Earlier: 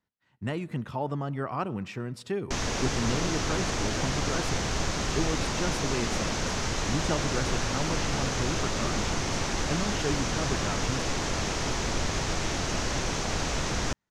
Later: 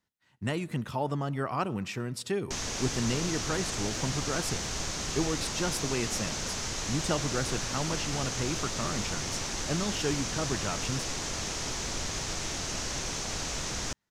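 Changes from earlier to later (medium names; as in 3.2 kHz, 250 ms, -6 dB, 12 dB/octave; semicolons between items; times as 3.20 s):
background -7.5 dB; master: add treble shelf 4.1 kHz +11.5 dB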